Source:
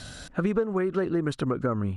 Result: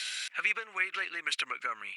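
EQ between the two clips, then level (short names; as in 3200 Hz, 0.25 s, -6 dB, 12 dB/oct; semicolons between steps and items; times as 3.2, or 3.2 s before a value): resonant high-pass 2300 Hz, resonance Q 5.1; +5.5 dB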